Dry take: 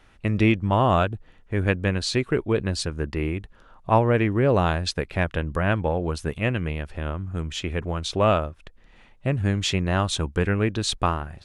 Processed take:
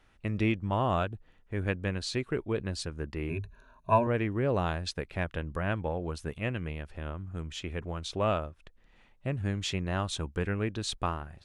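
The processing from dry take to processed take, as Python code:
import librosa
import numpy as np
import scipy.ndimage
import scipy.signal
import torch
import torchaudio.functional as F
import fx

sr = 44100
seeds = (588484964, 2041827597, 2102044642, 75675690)

y = fx.ripple_eq(x, sr, per_octave=1.5, db=17, at=(3.29, 4.07))
y = y * librosa.db_to_amplitude(-8.5)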